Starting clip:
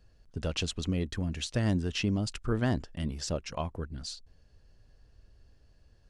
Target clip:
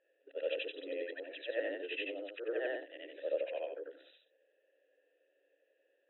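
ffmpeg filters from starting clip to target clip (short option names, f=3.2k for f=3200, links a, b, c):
-filter_complex "[0:a]afftfilt=real='re':imag='-im':win_size=8192:overlap=0.75,afftfilt=real='re*between(b*sr/4096,270,4000)':imag='im*between(b*sr/4096,270,4000)':win_size=4096:overlap=0.75,asplit=3[a][b][c];[a]bandpass=f=530:t=q:w=8,volume=0dB[d];[b]bandpass=f=1.84k:t=q:w=8,volume=-6dB[e];[c]bandpass=f=2.48k:t=q:w=8,volume=-9dB[f];[d][e][f]amix=inputs=3:normalize=0,volume=12dB"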